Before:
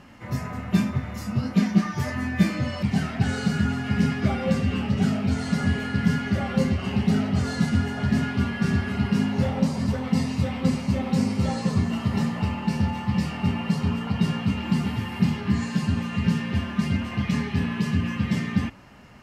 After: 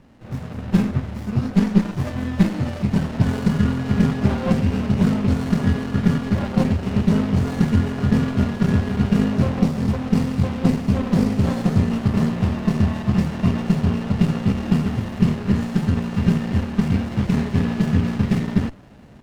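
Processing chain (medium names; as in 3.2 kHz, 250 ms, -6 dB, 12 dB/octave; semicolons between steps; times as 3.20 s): level rider gain up to 8 dB; sliding maximum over 33 samples; trim -1.5 dB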